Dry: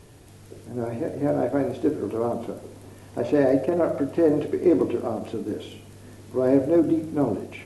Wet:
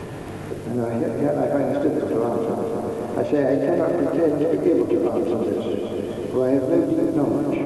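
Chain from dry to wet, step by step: regenerating reverse delay 0.128 s, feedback 77%, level -5 dB; three-band squash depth 70%

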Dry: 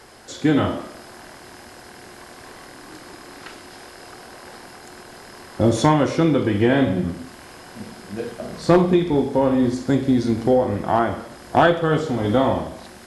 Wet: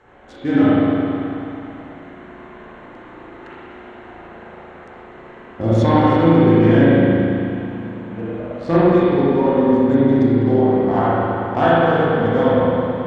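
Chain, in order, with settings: Wiener smoothing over 9 samples; LPF 6400 Hz 12 dB/oct; spring tank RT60 2.9 s, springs 36/54 ms, chirp 30 ms, DRR -9.5 dB; gain -6.5 dB

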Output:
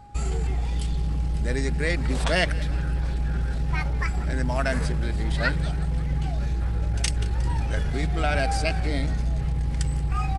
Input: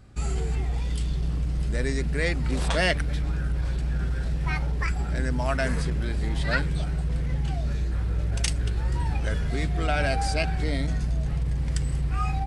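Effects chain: whine 820 Hz -48 dBFS; tempo 1.2×; frequency-shifting echo 0.18 s, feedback 63%, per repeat -61 Hz, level -19.5 dB; gain +1 dB

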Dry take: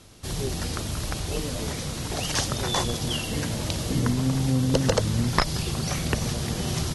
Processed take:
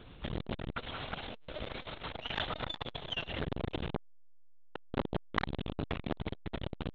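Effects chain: 0.74–3.4 Bessel high-pass 430 Hz, order 6; LPC vocoder at 8 kHz pitch kept; core saturation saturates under 1300 Hz

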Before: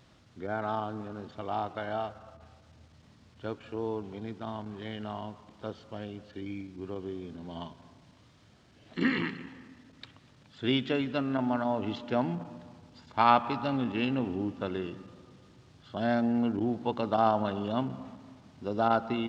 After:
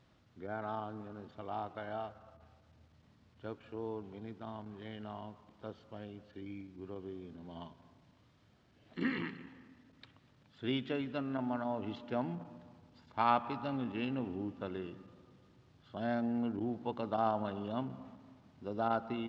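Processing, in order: LPF 3700 Hz 6 dB/oct; gain -7 dB

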